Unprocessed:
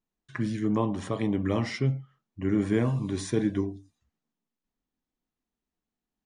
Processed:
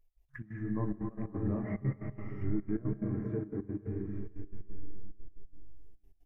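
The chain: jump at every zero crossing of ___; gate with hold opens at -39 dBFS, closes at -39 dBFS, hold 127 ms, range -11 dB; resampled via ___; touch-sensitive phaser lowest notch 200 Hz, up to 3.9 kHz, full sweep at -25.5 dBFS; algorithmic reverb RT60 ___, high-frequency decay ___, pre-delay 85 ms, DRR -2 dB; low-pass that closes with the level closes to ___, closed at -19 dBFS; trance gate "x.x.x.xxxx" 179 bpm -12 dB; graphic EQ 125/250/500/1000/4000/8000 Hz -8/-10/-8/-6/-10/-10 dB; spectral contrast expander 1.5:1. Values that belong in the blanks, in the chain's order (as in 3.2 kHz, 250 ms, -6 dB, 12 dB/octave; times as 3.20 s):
-34 dBFS, 32 kHz, 4.9 s, 1×, 1.9 kHz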